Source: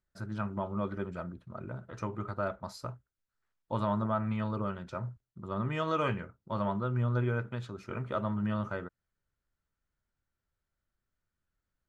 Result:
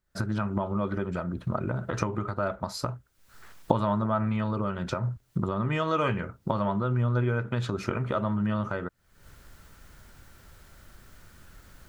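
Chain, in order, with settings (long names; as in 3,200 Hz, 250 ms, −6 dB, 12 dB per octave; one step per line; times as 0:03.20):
camcorder AGC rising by 60 dB per second
level +4 dB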